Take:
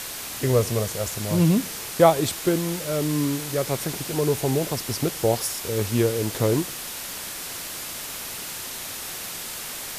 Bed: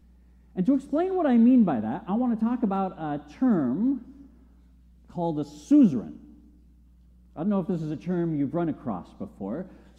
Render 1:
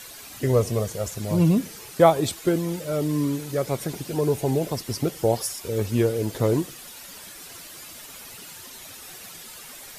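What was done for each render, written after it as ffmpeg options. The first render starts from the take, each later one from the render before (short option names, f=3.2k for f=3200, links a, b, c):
-af "afftdn=nr=11:nf=-34"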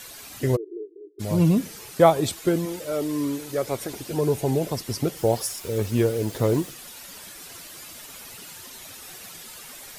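-filter_complex "[0:a]asplit=3[a][b][c];[a]afade=t=out:st=0.55:d=0.02[d];[b]asuperpass=centerf=360:order=12:qfactor=2.8,afade=t=in:st=0.55:d=0.02,afade=t=out:st=1.19:d=0.02[e];[c]afade=t=in:st=1.19:d=0.02[f];[d][e][f]amix=inputs=3:normalize=0,asettb=1/sr,asplit=3[g][h][i];[g]atrim=end=2.654[j];[h]atrim=start=2.65:end=4.11,asetpts=PTS-STARTPTS,afade=t=in:d=0.004:c=qsin,afade=t=out:st=1.456:d=0.004:c=qsin,equalizer=f=160:w=3.1:g=-13.5[k];[i]atrim=start=4.106[l];[j][k]acrossfade=d=0.004:c1=hsin:c2=qsin[m];[m][l]acrossfade=d=0.004:c1=qsin:c2=hsin,asettb=1/sr,asplit=3[n][o][p];[n]atrim=end=5.174[q];[o]atrim=start=5.17:end=6.71,asetpts=PTS-STARTPTS,afade=t=in:d=0.004:c=qsin,afade=t=out:st=1.536:d=0.004:c=qsin,acrusher=bits=8:dc=4:mix=0:aa=0.000001[r];[p]atrim=start=6.706[s];[q][r]acrossfade=d=0.004:c1=hsin:c2=qsin[t];[t][s]acrossfade=d=0.004:c1=qsin:c2=hsin"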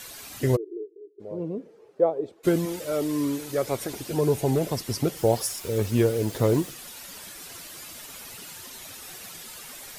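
-filter_complex "[0:a]asplit=3[a][b][c];[a]afade=t=out:st=0.84:d=0.02[d];[b]bandpass=f=450:t=q:w=3.5,afade=t=in:st=0.84:d=0.02,afade=t=out:st=2.43:d=0.02[e];[c]afade=t=in:st=2.43:d=0.02[f];[d][e][f]amix=inputs=3:normalize=0,asplit=3[g][h][i];[g]afade=t=out:st=4.47:d=0.02[j];[h]asoftclip=type=hard:threshold=-17dB,afade=t=in:st=4.47:d=0.02,afade=t=out:st=5.03:d=0.02[k];[i]afade=t=in:st=5.03:d=0.02[l];[j][k][l]amix=inputs=3:normalize=0"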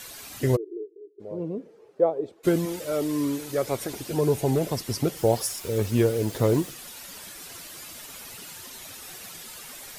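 -af anull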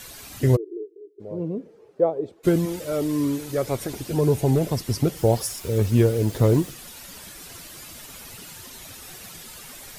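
-af "lowshelf=f=190:g=9"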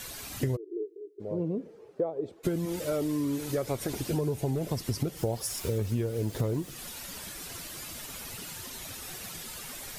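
-af "acompressor=threshold=-26dB:ratio=12"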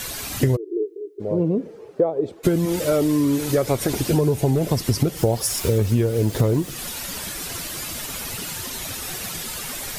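-af "volume=10.5dB"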